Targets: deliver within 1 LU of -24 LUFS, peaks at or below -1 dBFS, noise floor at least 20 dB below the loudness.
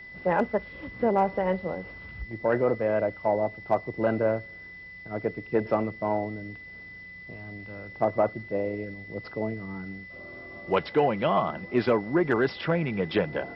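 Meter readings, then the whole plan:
steady tone 2 kHz; tone level -42 dBFS; loudness -27.5 LUFS; peak level -12.0 dBFS; loudness target -24.0 LUFS
-> band-stop 2 kHz, Q 30; trim +3.5 dB

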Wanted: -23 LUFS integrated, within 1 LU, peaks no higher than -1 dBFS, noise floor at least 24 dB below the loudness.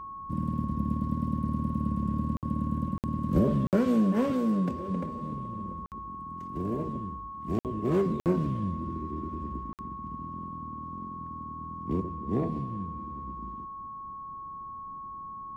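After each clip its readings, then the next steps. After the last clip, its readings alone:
dropouts 7; longest dropout 58 ms; steady tone 1.1 kHz; tone level -38 dBFS; loudness -31.5 LUFS; peak level -14.0 dBFS; loudness target -23.0 LUFS
-> interpolate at 2.37/2.98/3.67/5.86/7.59/8.20/9.73 s, 58 ms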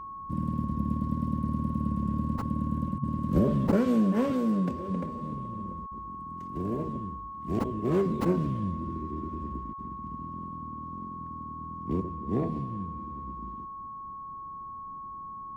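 dropouts 0; steady tone 1.1 kHz; tone level -38 dBFS
-> band-stop 1.1 kHz, Q 30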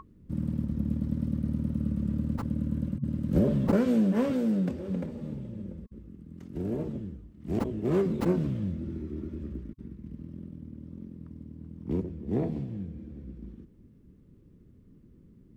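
steady tone not found; loudness -30.5 LUFS; peak level -13.0 dBFS; loudness target -23.0 LUFS
-> trim +7.5 dB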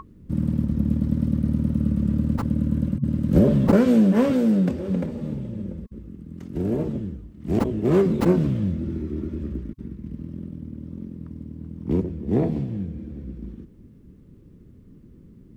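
loudness -23.0 LUFS; peak level -5.5 dBFS; noise floor -49 dBFS

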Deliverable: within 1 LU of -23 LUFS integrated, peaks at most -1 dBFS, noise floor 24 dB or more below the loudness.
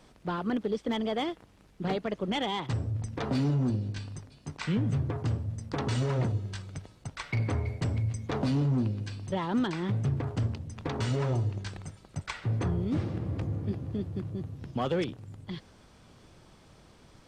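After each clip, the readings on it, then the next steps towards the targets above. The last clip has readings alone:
clipped samples 0.6%; clipping level -21.5 dBFS; loudness -31.5 LUFS; peak level -21.5 dBFS; loudness target -23.0 LUFS
-> clip repair -21.5 dBFS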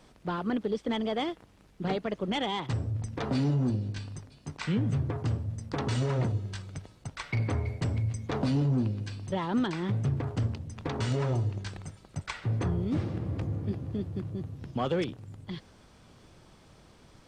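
clipped samples 0.0%; loudness -31.5 LUFS; peak level -16.5 dBFS; loudness target -23.0 LUFS
-> trim +8.5 dB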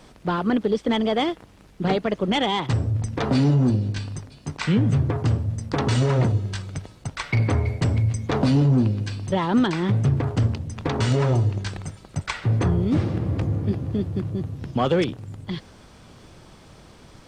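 loudness -23.0 LUFS; peak level -8.0 dBFS; noise floor -49 dBFS

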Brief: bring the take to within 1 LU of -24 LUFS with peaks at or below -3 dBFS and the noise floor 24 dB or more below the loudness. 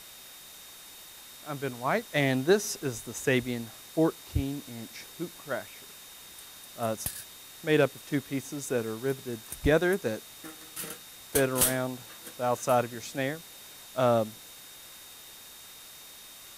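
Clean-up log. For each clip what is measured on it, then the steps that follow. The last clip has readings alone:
steady tone 3.7 kHz; tone level -53 dBFS; noise floor -49 dBFS; noise floor target -54 dBFS; loudness -30.0 LUFS; peak level -10.5 dBFS; loudness target -24.0 LUFS
-> band-stop 3.7 kHz, Q 30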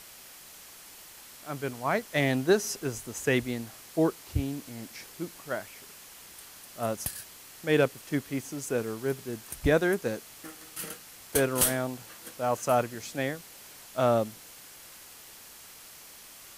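steady tone not found; noise floor -50 dBFS; noise floor target -54 dBFS
-> noise print and reduce 6 dB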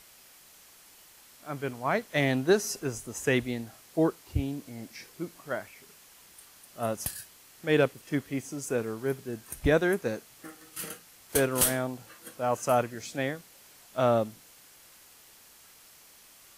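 noise floor -55 dBFS; loudness -30.0 LUFS; peak level -10.5 dBFS; loudness target -24.0 LUFS
-> trim +6 dB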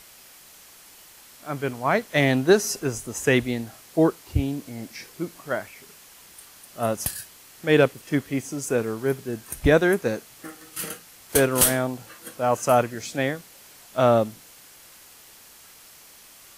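loudness -24.0 LUFS; peak level -4.5 dBFS; noise floor -49 dBFS

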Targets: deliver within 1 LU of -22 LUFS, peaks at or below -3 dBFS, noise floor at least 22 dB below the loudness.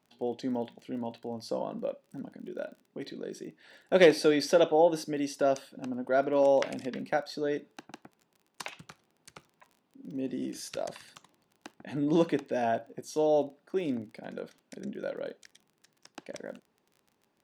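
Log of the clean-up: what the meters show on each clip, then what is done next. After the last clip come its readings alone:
tick rate 25 per s; loudness -29.5 LUFS; peak level -7.0 dBFS; loudness target -22.0 LUFS
-> de-click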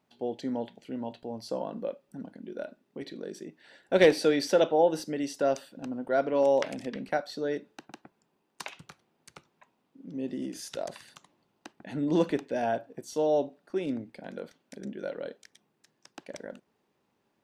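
tick rate 0 per s; loudness -29.5 LUFS; peak level -7.0 dBFS; loudness target -22.0 LUFS
-> trim +7.5 dB; peak limiter -3 dBFS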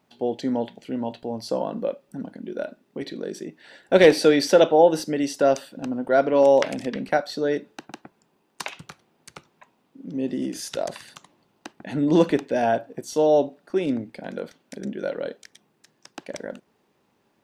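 loudness -22.5 LUFS; peak level -3.0 dBFS; noise floor -68 dBFS

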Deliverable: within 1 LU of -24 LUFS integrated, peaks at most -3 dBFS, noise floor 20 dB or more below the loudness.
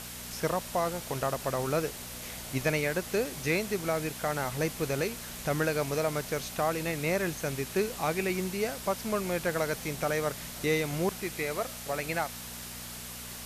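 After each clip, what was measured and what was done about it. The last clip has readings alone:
hum 60 Hz; highest harmonic 240 Hz; hum level -47 dBFS; noise floor -42 dBFS; noise floor target -52 dBFS; loudness -31.5 LUFS; peak level -16.5 dBFS; loudness target -24.0 LUFS
-> de-hum 60 Hz, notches 4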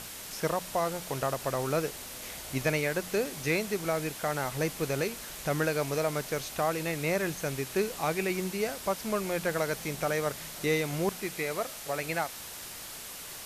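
hum not found; noise floor -43 dBFS; noise floor target -52 dBFS
-> noise reduction 9 dB, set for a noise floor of -43 dBFS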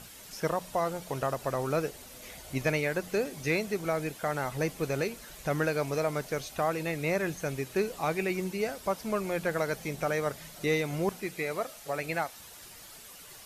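noise floor -49 dBFS; noise floor target -52 dBFS
-> noise reduction 6 dB, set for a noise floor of -49 dBFS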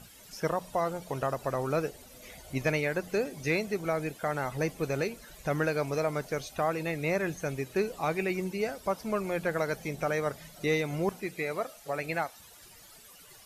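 noise floor -53 dBFS; loudness -32.0 LUFS; peak level -17.0 dBFS; loudness target -24.0 LUFS
-> trim +8 dB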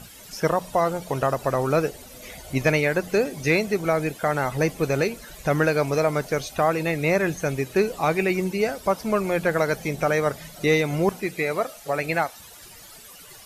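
loudness -24.0 LUFS; peak level -9.0 dBFS; noise floor -45 dBFS

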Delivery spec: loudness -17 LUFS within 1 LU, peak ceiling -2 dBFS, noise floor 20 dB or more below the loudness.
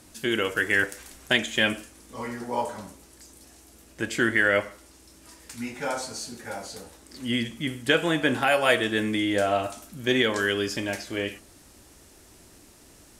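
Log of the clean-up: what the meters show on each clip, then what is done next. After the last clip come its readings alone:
loudness -26.0 LUFS; peak level -8.5 dBFS; loudness target -17.0 LUFS
-> trim +9 dB; peak limiter -2 dBFS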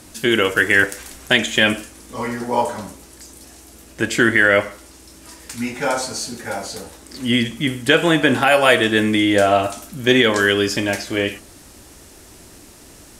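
loudness -17.5 LUFS; peak level -2.0 dBFS; noise floor -44 dBFS

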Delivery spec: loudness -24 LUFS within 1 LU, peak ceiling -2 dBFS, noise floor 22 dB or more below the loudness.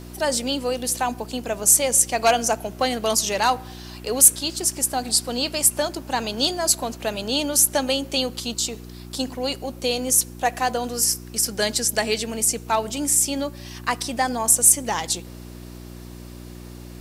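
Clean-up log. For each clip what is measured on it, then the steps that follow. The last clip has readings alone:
hum 60 Hz; highest harmonic 360 Hz; hum level -36 dBFS; loudness -20.5 LUFS; peak level -1.5 dBFS; loudness target -24.0 LUFS
-> de-hum 60 Hz, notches 6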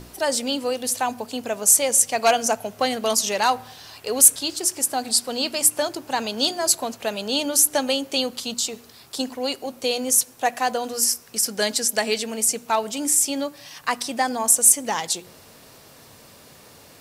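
hum not found; loudness -20.5 LUFS; peak level -1.5 dBFS; loudness target -24.0 LUFS
-> trim -3.5 dB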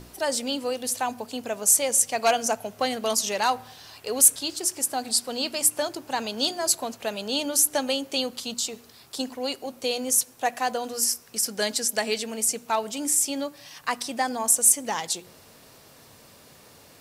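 loudness -24.0 LUFS; peak level -5.0 dBFS; noise floor -52 dBFS

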